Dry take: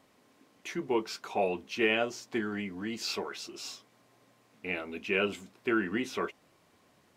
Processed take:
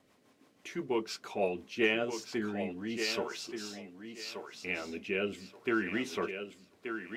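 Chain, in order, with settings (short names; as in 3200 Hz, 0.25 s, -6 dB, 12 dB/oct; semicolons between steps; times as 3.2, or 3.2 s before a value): rotary speaker horn 6 Hz, later 0.75 Hz, at 1.46; thinning echo 1.179 s, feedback 23%, high-pass 200 Hz, level -7 dB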